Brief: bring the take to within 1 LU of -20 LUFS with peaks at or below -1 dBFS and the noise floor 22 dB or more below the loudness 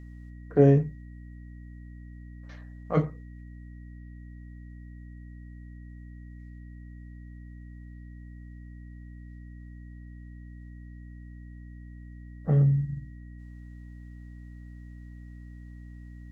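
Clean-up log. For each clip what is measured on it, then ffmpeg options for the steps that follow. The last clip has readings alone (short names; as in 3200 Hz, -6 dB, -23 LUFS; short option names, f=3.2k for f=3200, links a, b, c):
hum 60 Hz; harmonics up to 300 Hz; hum level -41 dBFS; steady tone 1900 Hz; tone level -61 dBFS; loudness -25.0 LUFS; peak -7.0 dBFS; loudness target -20.0 LUFS
-> -af "bandreject=f=60:t=h:w=4,bandreject=f=120:t=h:w=4,bandreject=f=180:t=h:w=4,bandreject=f=240:t=h:w=4,bandreject=f=300:t=h:w=4"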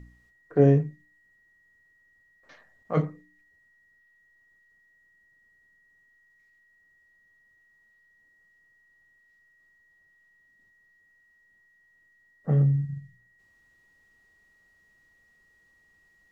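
hum none; steady tone 1900 Hz; tone level -61 dBFS
-> -af "bandreject=f=1.9k:w=30"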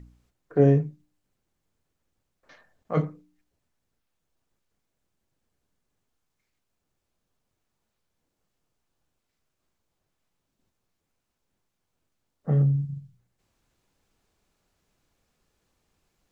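steady tone none; loudness -24.5 LUFS; peak -7.5 dBFS; loudness target -20.0 LUFS
-> -af "volume=4.5dB"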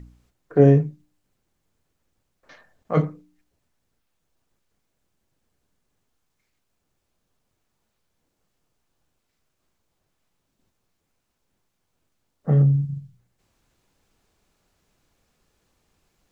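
loudness -20.5 LUFS; peak -3.0 dBFS; noise floor -76 dBFS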